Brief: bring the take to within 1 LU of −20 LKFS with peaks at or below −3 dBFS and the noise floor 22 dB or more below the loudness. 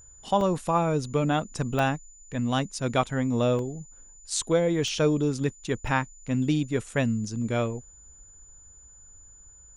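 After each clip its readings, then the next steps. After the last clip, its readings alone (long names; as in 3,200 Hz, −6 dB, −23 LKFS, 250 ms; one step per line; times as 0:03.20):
number of dropouts 6; longest dropout 1.4 ms; interfering tone 7,000 Hz; level of the tone −50 dBFS; integrated loudness −27.0 LKFS; sample peak −11.0 dBFS; target loudness −20.0 LKFS
→ repair the gap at 0:00.41/0:01.79/0:02.59/0:03.59/0:04.88/0:05.87, 1.4 ms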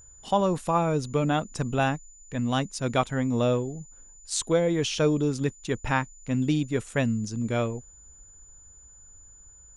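number of dropouts 0; interfering tone 7,000 Hz; level of the tone −50 dBFS
→ notch filter 7,000 Hz, Q 30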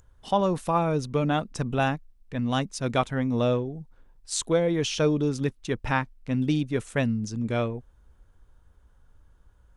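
interfering tone none found; integrated loudness −27.0 LKFS; sample peak −11.0 dBFS; target loudness −20.0 LKFS
→ level +7 dB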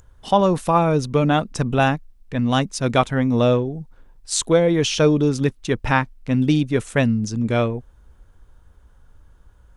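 integrated loudness −20.0 LKFS; sample peak −4.0 dBFS; background noise floor −52 dBFS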